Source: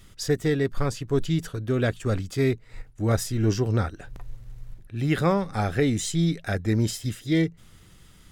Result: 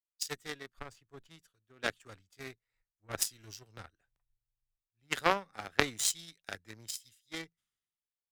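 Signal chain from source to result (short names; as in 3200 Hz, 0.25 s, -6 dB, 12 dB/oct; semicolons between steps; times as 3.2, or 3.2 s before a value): tilt shelf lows -8.5 dB, about 760 Hz; added harmonics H 3 -10 dB, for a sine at -8 dBFS; three-band expander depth 100%; gain -1 dB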